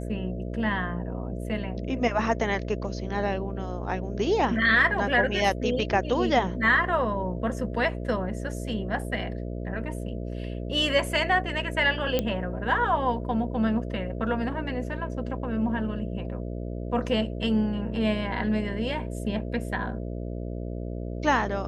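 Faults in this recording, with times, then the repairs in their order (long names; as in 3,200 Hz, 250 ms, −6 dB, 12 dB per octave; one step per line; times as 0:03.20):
mains buzz 60 Hz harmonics 11 −33 dBFS
0:12.19: click −11 dBFS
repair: click removal
hum removal 60 Hz, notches 11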